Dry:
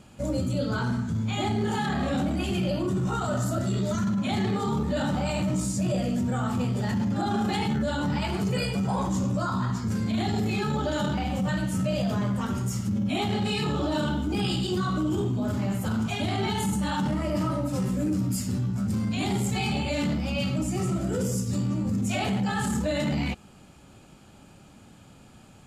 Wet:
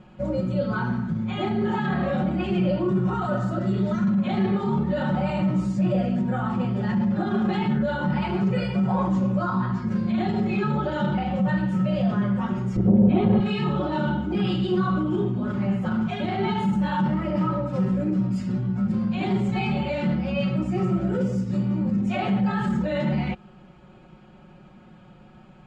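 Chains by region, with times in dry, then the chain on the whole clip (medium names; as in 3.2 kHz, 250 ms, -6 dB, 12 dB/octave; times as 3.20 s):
12.76–13.40 s: low-pass 12 kHz + tilt EQ -3.5 dB/octave + transformer saturation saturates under 220 Hz
whole clip: low-pass 2.3 kHz 12 dB/octave; comb 5.5 ms, depth 90%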